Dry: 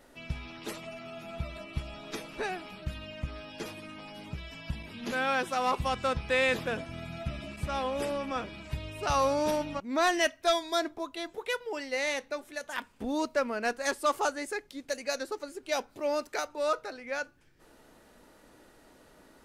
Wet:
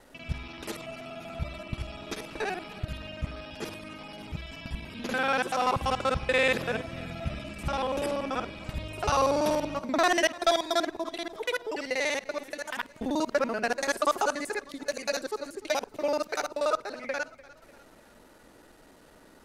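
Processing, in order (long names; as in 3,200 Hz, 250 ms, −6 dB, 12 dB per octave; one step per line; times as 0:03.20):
reversed piece by piece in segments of 48 ms
feedback echo with a swinging delay time 298 ms, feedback 50%, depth 52 cents, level −20 dB
level +2.5 dB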